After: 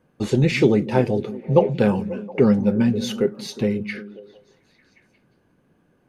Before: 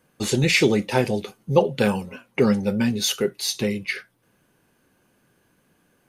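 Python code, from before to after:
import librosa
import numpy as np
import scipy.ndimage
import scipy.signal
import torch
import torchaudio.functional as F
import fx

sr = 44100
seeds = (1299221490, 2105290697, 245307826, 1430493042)

y = fx.lowpass(x, sr, hz=3700.0, slope=6)
y = fx.tilt_shelf(y, sr, db=4.5, hz=1100.0)
y = fx.echo_stepped(y, sr, ms=179, hz=180.0, octaves=0.7, feedback_pct=70, wet_db=-10)
y = y * 10.0 ** (-1.0 / 20.0)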